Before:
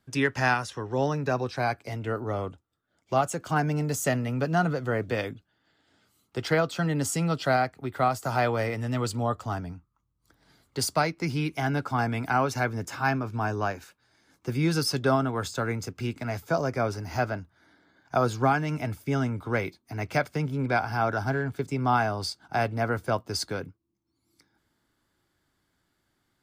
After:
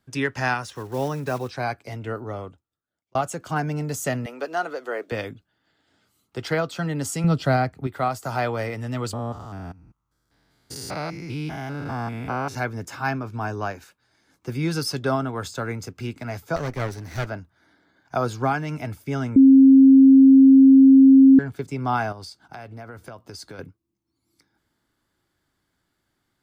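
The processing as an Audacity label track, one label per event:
0.640000	1.500000	one scale factor per block 5 bits
2.110000	3.150000	fade out
4.260000	5.120000	high-pass filter 340 Hz 24 dB per octave
7.240000	7.870000	low-shelf EQ 270 Hz +12 dB
9.130000	12.550000	spectrum averaged block by block every 200 ms
16.560000	17.260000	lower of the sound and its delayed copy delay 0.49 ms
19.360000	21.390000	beep over 268 Hz −7.5 dBFS
22.120000	23.590000	downward compressor 8 to 1, threshold −35 dBFS

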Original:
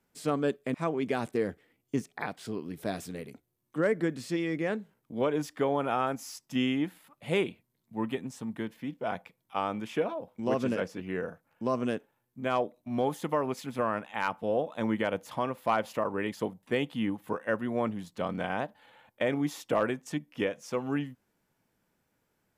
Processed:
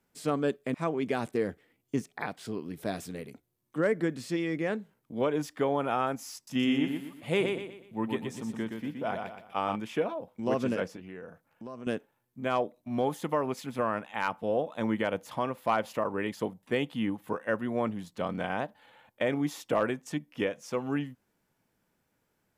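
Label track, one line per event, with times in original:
6.350000	9.760000	repeating echo 121 ms, feedback 37%, level −5 dB
10.960000	11.870000	downward compressor 2.5 to 1, threshold −44 dBFS

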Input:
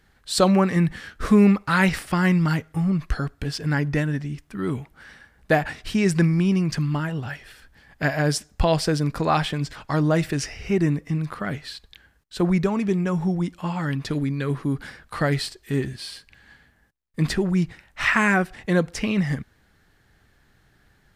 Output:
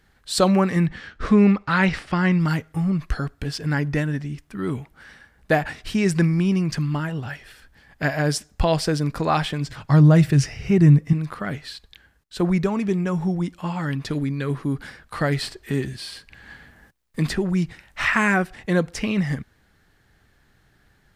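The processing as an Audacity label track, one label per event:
0.860000	2.400000	low-pass filter 4,900 Hz
9.680000	11.130000	parametric band 130 Hz +14 dB 0.91 octaves
15.420000	18.130000	multiband upward and downward compressor depth 40%

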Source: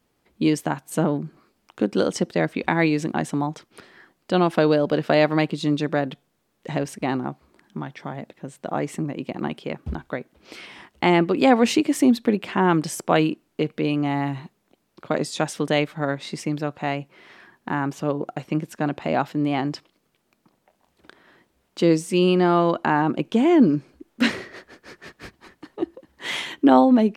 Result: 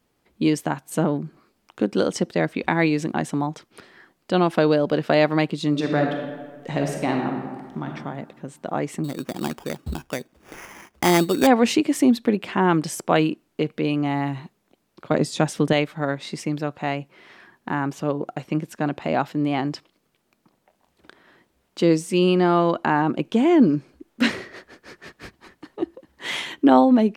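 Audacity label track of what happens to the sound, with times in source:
5.700000	7.880000	thrown reverb, RT60 1.5 s, DRR 1.5 dB
9.040000	11.470000	sample-rate reduction 4,100 Hz
15.110000	15.730000	low-shelf EQ 340 Hz +8 dB

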